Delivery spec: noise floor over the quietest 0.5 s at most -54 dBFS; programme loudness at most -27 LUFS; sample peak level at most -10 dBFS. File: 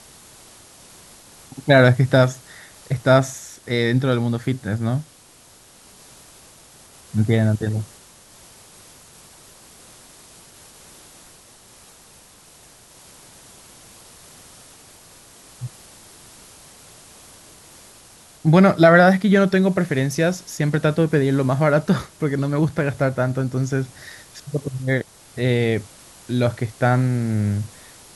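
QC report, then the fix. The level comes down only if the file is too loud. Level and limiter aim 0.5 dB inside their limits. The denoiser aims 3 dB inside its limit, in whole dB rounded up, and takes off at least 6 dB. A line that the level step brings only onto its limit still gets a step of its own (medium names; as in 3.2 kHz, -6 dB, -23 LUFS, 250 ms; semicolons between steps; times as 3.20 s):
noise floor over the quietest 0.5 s -49 dBFS: fail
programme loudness -19.5 LUFS: fail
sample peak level -2.0 dBFS: fail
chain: trim -8 dB; peak limiter -10.5 dBFS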